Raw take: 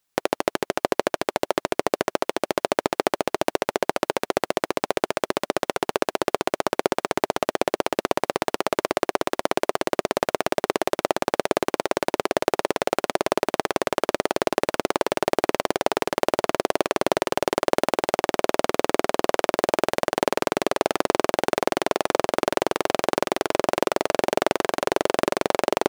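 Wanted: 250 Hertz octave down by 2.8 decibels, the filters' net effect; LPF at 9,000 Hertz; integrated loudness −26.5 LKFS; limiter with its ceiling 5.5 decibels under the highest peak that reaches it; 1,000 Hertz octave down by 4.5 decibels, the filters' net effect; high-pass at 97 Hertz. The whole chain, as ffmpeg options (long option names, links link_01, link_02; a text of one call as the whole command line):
ffmpeg -i in.wav -af "highpass=97,lowpass=9000,equalizer=frequency=250:width_type=o:gain=-3.5,equalizer=frequency=1000:width_type=o:gain=-6,volume=3.5dB,alimiter=limit=-4.5dB:level=0:latency=1" out.wav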